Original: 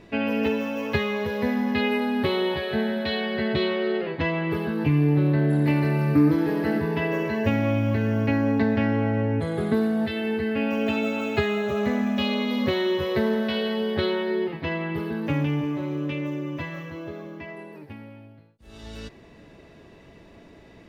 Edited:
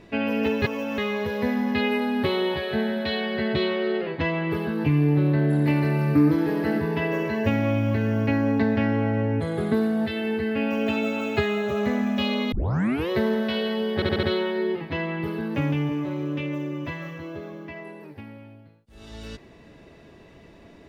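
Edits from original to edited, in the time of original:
0:00.62–0:00.98: reverse
0:12.52: tape start 0.58 s
0:13.95: stutter 0.07 s, 5 plays

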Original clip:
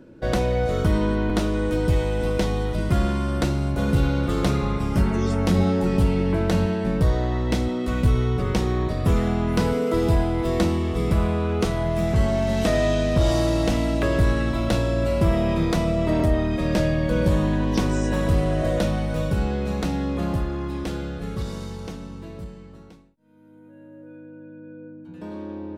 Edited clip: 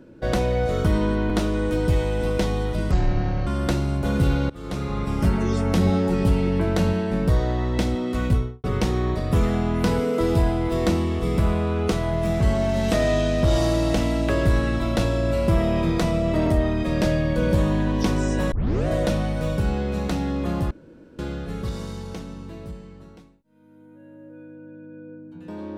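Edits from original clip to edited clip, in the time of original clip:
0:02.91–0:03.20: play speed 52%
0:04.23–0:04.87: fade in, from −24 dB
0:07.98–0:08.37: fade out and dull
0:18.25: tape start 0.35 s
0:20.44–0:20.92: fill with room tone

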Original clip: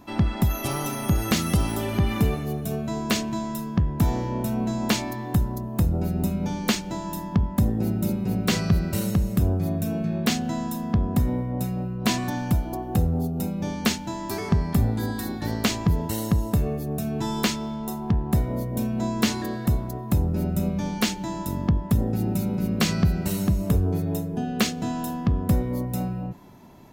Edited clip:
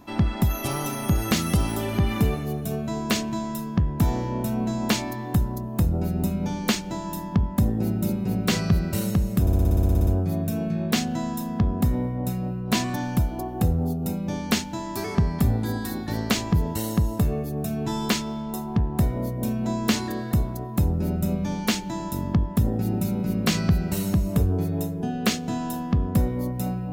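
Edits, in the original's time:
0:09.41: stutter 0.06 s, 12 plays

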